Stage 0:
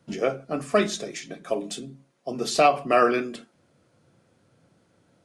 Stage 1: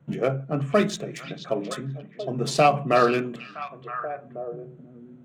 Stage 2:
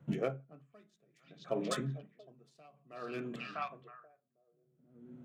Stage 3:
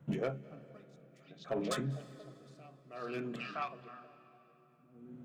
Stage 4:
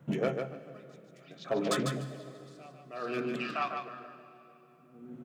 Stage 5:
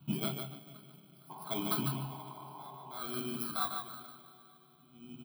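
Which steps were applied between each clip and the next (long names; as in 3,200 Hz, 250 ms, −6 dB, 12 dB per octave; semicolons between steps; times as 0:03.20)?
adaptive Wiener filter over 9 samples; parametric band 140 Hz +14 dB 0.55 octaves; echo through a band-pass that steps 483 ms, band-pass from 3,500 Hz, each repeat −1.4 octaves, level −6 dB
tremolo with a sine in dB 0.57 Hz, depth 39 dB; level −3 dB
soft clipping −27.5 dBFS, distortion −15 dB; convolution reverb RT60 3.6 s, pre-delay 187 ms, DRR 17 dB; level +1.5 dB
low-shelf EQ 110 Hz −10 dB; on a send: repeating echo 148 ms, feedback 17%, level −5.5 dB; on the sum: level +5.5 dB
samples in bit-reversed order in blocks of 16 samples; sound drawn into the spectrogram noise, 0:01.29–0:03.02, 360–1,100 Hz −46 dBFS; phaser with its sweep stopped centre 1,900 Hz, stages 6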